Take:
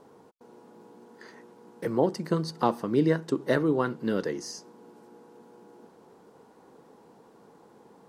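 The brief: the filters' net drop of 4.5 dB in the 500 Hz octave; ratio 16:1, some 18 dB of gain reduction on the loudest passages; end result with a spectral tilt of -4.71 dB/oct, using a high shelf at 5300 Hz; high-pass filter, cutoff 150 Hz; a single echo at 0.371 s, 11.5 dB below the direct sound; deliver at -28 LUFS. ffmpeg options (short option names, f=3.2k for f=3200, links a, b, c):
-af "highpass=150,equalizer=f=500:t=o:g=-5.5,highshelf=f=5.3k:g=-6,acompressor=threshold=-40dB:ratio=16,aecho=1:1:371:0.266,volume=20.5dB"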